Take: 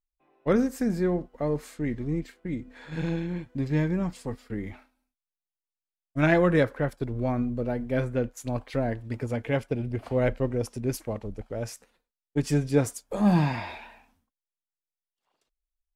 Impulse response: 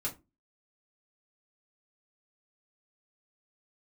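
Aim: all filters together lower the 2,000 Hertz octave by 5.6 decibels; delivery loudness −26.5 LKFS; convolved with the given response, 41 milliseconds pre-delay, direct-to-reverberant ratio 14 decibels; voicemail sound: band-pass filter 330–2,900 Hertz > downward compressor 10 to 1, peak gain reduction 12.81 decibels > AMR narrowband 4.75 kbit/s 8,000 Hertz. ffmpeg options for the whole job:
-filter_complex "[0:a]equalizer=frequency=2000:width_type=o:gain=-6.5,asplit=2[link_01][link_02];[1:a]atrim=start_sample=2205,adelay=41[link_03];[link_02][link_03]afir=irnorm=-1:irlink=0,volume=-16.5dB[link_04];[link_01][link_04]amix=inputs=2:normalize=0,highpass=330,lowpass=2900,acompressor=threshold=-31dB:ratio=10,volume=12.5dB" -ar 8000 -c:a libopencore_amrnb -b:a 4750

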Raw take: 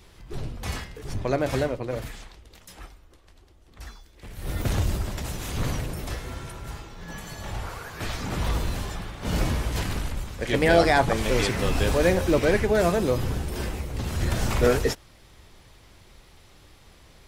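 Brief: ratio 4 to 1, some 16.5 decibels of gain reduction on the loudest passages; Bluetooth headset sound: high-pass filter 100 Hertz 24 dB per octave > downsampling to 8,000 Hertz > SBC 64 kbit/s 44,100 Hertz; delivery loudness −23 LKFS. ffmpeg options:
ffmpeg -i in.wav -af "acompressor=threshold=-35dB:ratio=4,highpass=frequency=100:width=0.5412,highpass=frequency=100:width=1.3066,aresample=8000,aresample=44100,volume=17dB" -ar 44100 -c:a sbc -b:a 64k out.sbc

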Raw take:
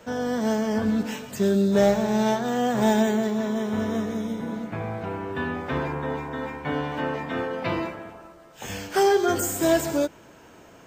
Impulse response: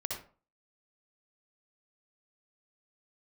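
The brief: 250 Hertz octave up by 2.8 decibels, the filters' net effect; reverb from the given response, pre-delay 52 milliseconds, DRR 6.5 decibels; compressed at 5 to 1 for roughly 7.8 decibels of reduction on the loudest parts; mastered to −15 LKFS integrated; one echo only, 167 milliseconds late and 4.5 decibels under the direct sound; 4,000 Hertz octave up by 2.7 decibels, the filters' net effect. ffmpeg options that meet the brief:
-filter_complex "[0:a]equalizer=frequency=250:width_type=o:gain=3.5,equalizer=frequency=4000:width_type=o:gain=3.5,acompressor=threshold=-23dB:ratio=5,aecho=1:1:167:0.596,asplit=2[link_01][link_02];[1:a]atrim=start_sample=2205,adelay=52[link_03];[link_02][link_03]afir=irnorm=-1:irlink=0,volume=-8.5dB[link_04];[link_01][link_04]amix=inputs=2:normalize=0,volume=10.5dB"

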